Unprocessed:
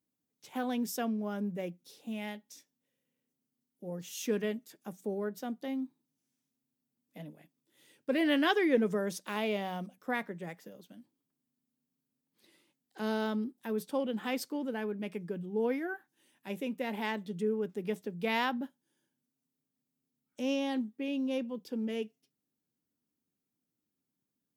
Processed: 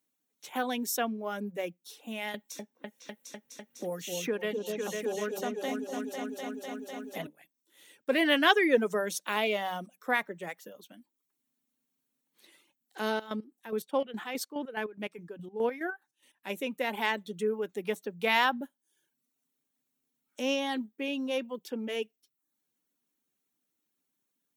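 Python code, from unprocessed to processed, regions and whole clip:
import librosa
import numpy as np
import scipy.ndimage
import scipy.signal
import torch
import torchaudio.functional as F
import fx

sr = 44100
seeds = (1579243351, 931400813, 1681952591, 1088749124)

y = fx.chain(x, sr, fx.echo_opening(ms=250, hz=750, octaves=2, feedback_pct=70, wet_db=-3),
    fx.band_squash(depth_pct=70), at=(2.34, 7.27))
y = fx.chain(y, sr, fx.high_shelf(hz=6100.0, db=-5.0),
    fx.chopper(hz=4.8, depth_pct=60, duty_pct=45), at=(13.1, 16.49))
y = fx.highpass(y, sr, hz=630.0, slope=6)
y = fx.notch(y, sr, hz=4900.0, q=7.7)
y = fx.dereverb_blind(y, sr, rt60_s=0.52)
y = y * librosa.db_to_amplitude(8.0)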